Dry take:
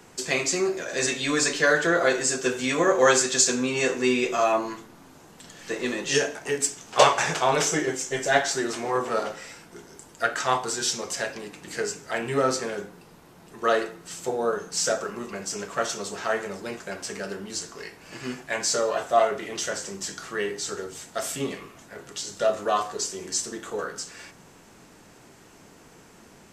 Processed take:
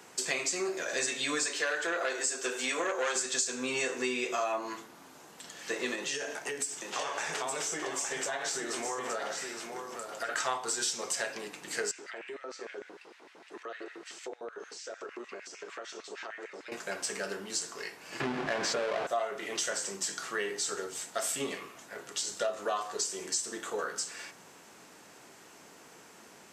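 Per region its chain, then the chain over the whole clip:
1.46–3.16 HPF 300 Hz + core saturation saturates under 1600 Hz
5.95–10.29 HPF 53 Hz + compressor 12:1, threshold -29 dBFS + echo 0.867 s -6 dB
11.91–16.72 compressor 8:1, threshold -38 dBFS + LFO high-pass square 6.6 Hz 340–2000 Hz + air absorption 85 m
18.2–19.07 half-waves squared off + tape spacing loss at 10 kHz 26 dB + fast leveller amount 70%
whole clip: HPF 480 Hz 6 dB/oct; dynamic EQ 8200 Hz, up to +5 dB, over -49 dBFS, Q 5.8; compressor 5:1, threshold -29 dBFS

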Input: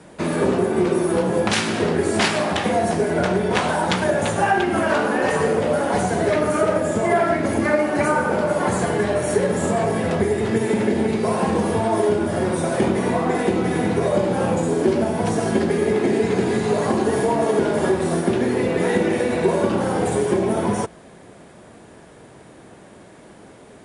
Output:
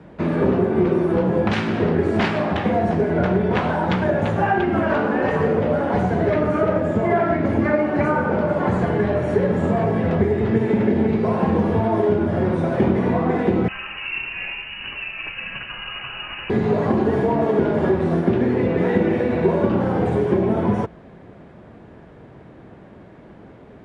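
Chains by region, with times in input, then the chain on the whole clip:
13.68–16.5 HPF 540 Hz 24 dB/oct + inverted band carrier 3300 Hz
whole clip: LPF 2600 Hz 12 dB/oct; low shelf 240 Hz +8.5 dB; gain -2 dB

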